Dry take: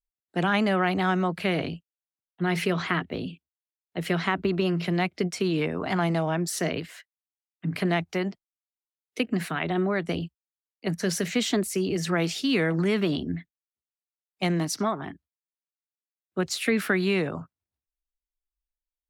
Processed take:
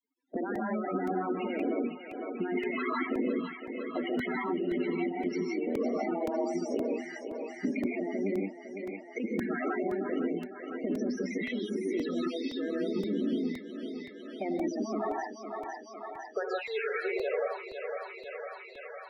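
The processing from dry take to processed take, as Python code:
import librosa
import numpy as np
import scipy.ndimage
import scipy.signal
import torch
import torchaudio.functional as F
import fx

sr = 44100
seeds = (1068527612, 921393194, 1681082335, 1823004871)

y = fx.octave_divider(x, sr, octaves=1, level_db=0.0)
y = fx.brickwall_highpass(y, sr, low_hz=fx.steps((0.0, 200.0), (14.97, 390.0)))
y = fx.over_compress(y, sr, threshold_db=-33.0, ratio=-1.0)
y = fx.rev_gated(y, sr, seeds[0], gate_ms=200, shape='rising', drr_db=-3.5)
y = fx.spec_topn(y, sr, count=16)
y = fx.spacing_loss(y, sr, db_at_10k=27)
y = fx.echo_thinned(y, sr, ms=505, feedback_pct=51, hz=580.0, wet_db=-9.5)
y = fx.buffer_crackle(y, sr, first_s=0.55, period_s=0.52, block=128, kind='repeat')
y = fx.band_squash(y, sr, depth_pct=70)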